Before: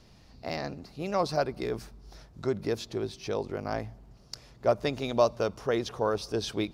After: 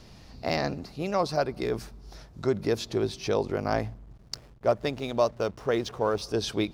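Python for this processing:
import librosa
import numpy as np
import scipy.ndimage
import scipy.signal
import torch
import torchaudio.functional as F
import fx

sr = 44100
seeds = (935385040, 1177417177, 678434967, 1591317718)

y = fx.rider(x, sr, range_db=4, speed_s=0.5)
y = fx.backlash(y, sr, play_db=-47.0, at=(3.88, 6.22))
y = F.gain(torch.from_numpy(y), 2.5).numpy()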